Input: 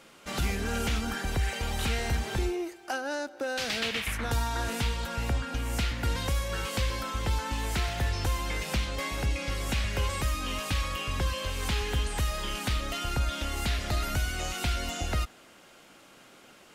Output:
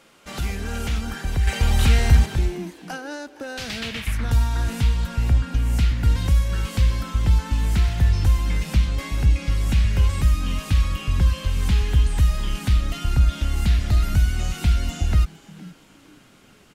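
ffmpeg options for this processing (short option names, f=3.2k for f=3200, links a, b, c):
-filter_complex "[0:a]asettb=1/sr,asplit=3[a][b][c];[a]atrim=end=1.474[d];[b]atrim=start=1.47:end=2.26,asetpts=PTS-STARTPTS,afade=t=in:d=0.004:c=qsin,afade=t=out:st=0.786:d=0.004:c=qsin,acontrast=69[e];[c]atrim=start=2.256[f];[d][e]acrossfade=d=0.004:c1=hsin:c2=qsin[g];[g][f]acrossfade=d=0.004:c1=qsin:c2=hsin,asplit=4[h][i][j][k];[i]adelay=463,afreqshift=120,volume=-19dB[l];[j]adelay=926,afreqshift=240,volume=-27.2dB[m];[k]adelay=1389,afreqshift=360,volume=-35.4dB[n];[h][l][m][n]amix=inputs=4:normalize=0,asubboost=boost=4:cutoff=230"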